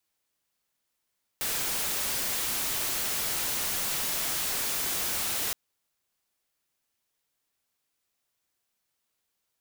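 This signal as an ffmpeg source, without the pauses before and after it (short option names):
-f lavfi -i "anoisesrc=c=white:a=0.0548:d=4.12:r=44100:seed=1"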